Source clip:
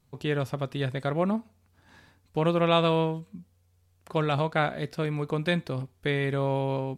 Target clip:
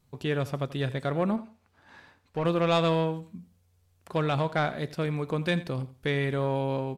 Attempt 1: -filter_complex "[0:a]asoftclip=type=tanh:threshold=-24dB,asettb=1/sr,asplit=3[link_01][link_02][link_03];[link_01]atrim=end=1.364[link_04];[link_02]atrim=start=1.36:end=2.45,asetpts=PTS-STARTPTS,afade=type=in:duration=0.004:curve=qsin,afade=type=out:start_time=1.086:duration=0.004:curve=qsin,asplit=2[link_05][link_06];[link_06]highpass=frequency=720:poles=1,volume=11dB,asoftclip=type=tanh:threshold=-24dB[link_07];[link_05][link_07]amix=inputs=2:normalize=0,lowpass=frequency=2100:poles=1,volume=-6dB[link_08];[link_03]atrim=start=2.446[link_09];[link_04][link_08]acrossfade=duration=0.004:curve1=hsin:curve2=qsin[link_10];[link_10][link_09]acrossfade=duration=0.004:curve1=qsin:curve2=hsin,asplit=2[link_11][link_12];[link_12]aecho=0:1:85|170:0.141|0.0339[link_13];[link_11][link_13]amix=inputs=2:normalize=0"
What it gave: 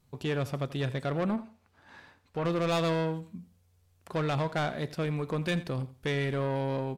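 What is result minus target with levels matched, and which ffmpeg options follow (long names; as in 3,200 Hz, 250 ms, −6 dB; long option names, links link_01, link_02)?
soft clipping: distortion +9 dB
-filter_complex "[0:a]asoftclip=type=tanh:threshold=-15.5dB,asettb=1/sr,asplit=3[link_01][link_02][link_03];[link_01]atrim=end=1.364[link_04];[link_02]atrim=start=1.36:end=2.45,asetpts=PTS-STARTPTS,afade=type=in:duration=0.004:curve=qsin,afade=type=out:start_time=1.086:duration=0.004:curve=qsin,asplit=2[link_05][link_06];[link_06]highpass=frequency=720:poles=1,volume=11dB,asoftclip=type=tanh:threshold=-24dB[link_07];[link_05][link_07]amix=inputs=2:normalize=0,lowpass=frequency=2100:poles=1,volume=-6dB[link_08];[link_03]atrim=start=2.446[link_09];[link_04][link_08]acrossfade=duration=0.004:curve1=hsin:curve2=qsin[link_10];[link_10][link_09]acrossfade=duration=0.004:curve1=qsin:curve2=hsin,asplit=2[link_11][link_12];[link_12]aecho=0:1:85|170:0.141|0.0339[link_13];[link_11][link_13]amix=inputs=2:normalize=0"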